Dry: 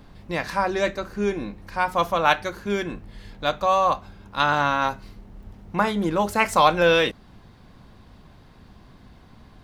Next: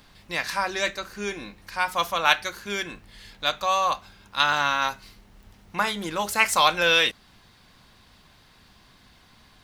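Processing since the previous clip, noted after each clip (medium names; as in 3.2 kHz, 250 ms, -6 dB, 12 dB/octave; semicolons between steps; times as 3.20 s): tilt shelf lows -8.5 dB, about 1.2 kHz; trim -1.5 dB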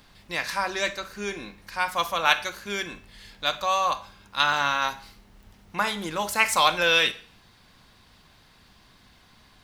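Schroeder reverb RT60 0.47 s, DRR 14.5 dB; trim -1 dB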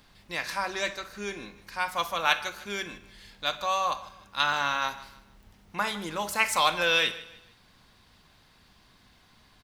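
feedback delay 154 ms, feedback 36%, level -18 dB; trim -3.5 dB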